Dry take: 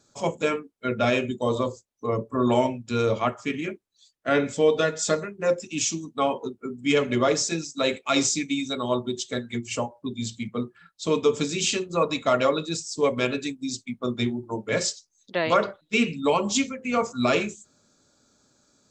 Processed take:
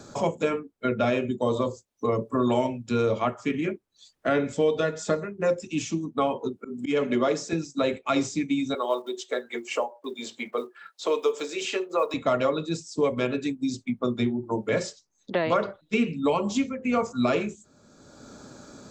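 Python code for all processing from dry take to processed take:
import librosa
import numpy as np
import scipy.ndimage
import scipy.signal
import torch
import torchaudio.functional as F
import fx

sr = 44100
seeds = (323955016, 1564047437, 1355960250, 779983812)

y = fx.chain(x, sr, fx.highpass(hz=160.0, slope=24),
    fx.auto_swell(attack_ms=173.0), at=(6.56, 7.53))
y = fx.chain(y, sr, fx.block_float(bits=7),
    fx.highpass(hz=410.0, slope=24), at=(8.74, 12.14))
y = fx.high_shelf(y, sr, hz=2100.0, db=-9.0)
y = fx.band_squash(y, sr, depth_pct=70)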